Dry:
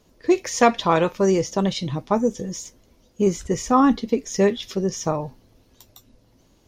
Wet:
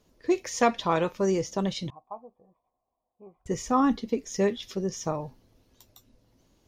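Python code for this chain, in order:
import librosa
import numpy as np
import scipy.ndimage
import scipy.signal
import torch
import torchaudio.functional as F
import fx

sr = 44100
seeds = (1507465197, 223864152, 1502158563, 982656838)

y = fx.formant_cascade(x, sr, vowel='a', at=(1.9, 3.46))
y = y * librosa.db_to_amplitude(-6.5)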